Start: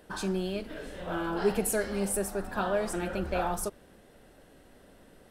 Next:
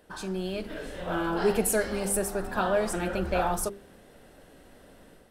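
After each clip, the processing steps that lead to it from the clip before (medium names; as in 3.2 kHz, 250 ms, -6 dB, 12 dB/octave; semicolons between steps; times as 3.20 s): hum notches 50/100/150/200/250/300/350/400 Hz; level rider gain up to 6.5 dB; trim -3 dB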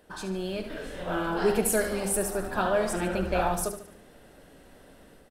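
feedback delay 73 ms, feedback 44%, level -10 dB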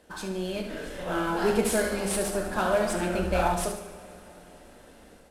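CVSD coder 64 kbps; Chebyshev shaper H 6 -27 dB, 8 -26 dB, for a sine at -12.5 dBFS; two-slope reverb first 0.52 s, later 4.3 s, from -18 dB, DRR 5 dB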